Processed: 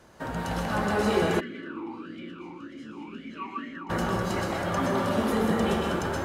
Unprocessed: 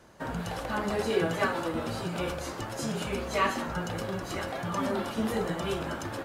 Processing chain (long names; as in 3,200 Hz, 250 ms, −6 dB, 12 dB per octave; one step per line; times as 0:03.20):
dense smooth reverb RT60 2.4 s, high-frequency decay 0.3×, pre-delay 110 ms, DRR −1.5 dB
0:01.39–0:03.89: formant filter swept between two vowels i-u 1.3 Hz → 2.6 Hz
level +1 dB